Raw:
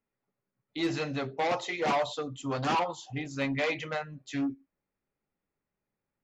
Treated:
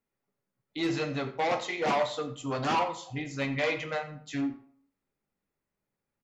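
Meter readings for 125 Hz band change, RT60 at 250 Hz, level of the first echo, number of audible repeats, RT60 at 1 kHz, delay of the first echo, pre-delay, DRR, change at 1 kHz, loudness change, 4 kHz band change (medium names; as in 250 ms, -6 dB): +0.5 dB, 0.50 s, -16.5 dB, 1, 0.55 s, 87 ms, 14 ms, 7.5 dB, +0.5 dB, +0.5 dB, +0.5 dB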